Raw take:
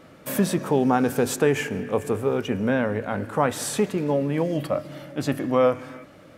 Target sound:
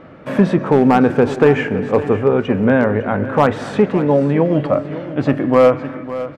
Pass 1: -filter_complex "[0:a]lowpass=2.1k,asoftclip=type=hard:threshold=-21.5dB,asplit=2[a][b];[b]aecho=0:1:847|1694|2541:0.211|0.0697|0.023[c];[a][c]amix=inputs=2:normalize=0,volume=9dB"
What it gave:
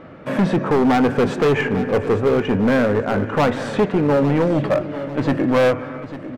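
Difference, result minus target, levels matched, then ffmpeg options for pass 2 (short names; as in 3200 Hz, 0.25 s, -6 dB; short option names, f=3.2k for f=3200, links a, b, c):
echo 0.29 s late; hard clip: distortion +14 dB
-filter_complex "[0:a]lowpass=2.1k,asoftclip=type=hard:threshold=-12.5dB,asplit=2[a][b];[b]aecho=0:1:557|1114|1671:0.211|0.0697|0.023[c];[a][c]amix=inputs=2:normalize=0,volume=9dB"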